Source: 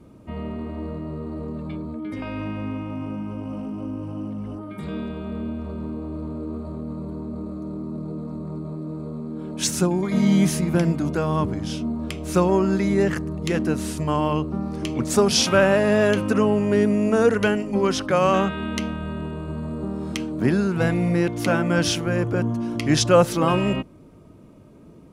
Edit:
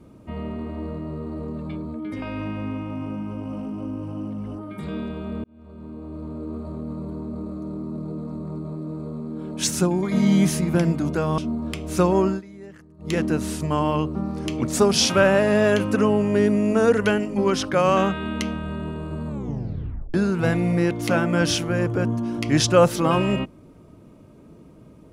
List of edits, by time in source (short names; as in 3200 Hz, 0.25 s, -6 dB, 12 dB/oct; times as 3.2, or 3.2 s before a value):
5.44–7 fade in equal-power
11.38–11.75 cut
12.64–13.5 dip -21.5 dB, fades 0.15 s
19.65 tape stop 0.86 s